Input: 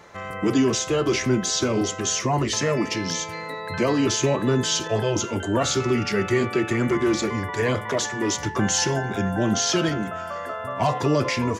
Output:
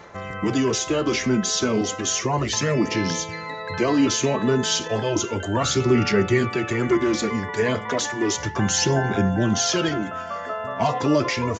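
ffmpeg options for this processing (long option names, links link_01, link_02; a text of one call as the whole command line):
ffmpeg -i in.wav -af "aphaser=in_gain=1:out_gain=1:delay=4.7:decay=0.4:speed=0.33:type=sinusoidal,aresample=16000,aresample=44100" out.wav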